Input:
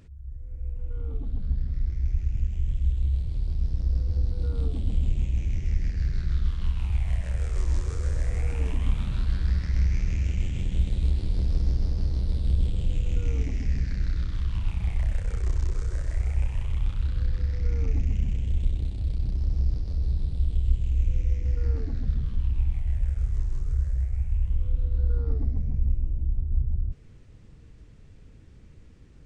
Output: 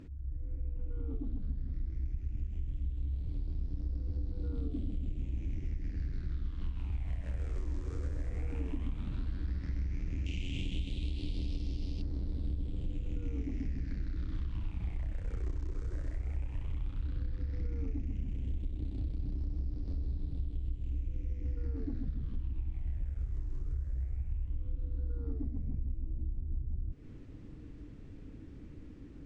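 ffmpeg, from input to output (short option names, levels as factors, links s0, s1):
-filter_complex "[0:a]asettb=1/sr,asplit=3[s0][s1][s2];[s0]atrim=end=4.624[s3];[s1]atrim=start=4.62:end=5.23,asetpts=PTS-STARTPTS,afade=t=in:d=0.004:c=qsin,afade=t=out:st=0.606:d=0.004:c=qsin,asuperstop=centerf=910:order=4:qfactor=3.1[s4];[s2]atrim=start=5.226[s5];[s3][s4]acrossfade=d=0.004:c1=hsin:c2=qsin[s6];[s6][s5]acrossfade=d=0.004:c1=qsin:c2=hsin,asettb=1/sr,asplit=3[s7][s8][s9];[s7]atrim=end=10.264[s10];[s8]atrim=start=10.26:end=12.02,asetpts=PTS-STARTPTS,afade=t=in:d=0.004:c=qsin,afade=t=out:st=1.756:d=0.004:c=qsin,highshelf=f=2100:t=q:w=3:g=10[s11];[s9]atrim=start=12.016[s12];[s10][s11]acrossfade=d=0.004:c1=hsin:c2=qsin[s13];[s13][s12]acrossfade=d=0.004:c1=qsin:c2=hsin,lowpass=f=3100:p=1,equalizer=f=290:w=2.5:g=13,acompressor=threshold=0.0251:ratio=6"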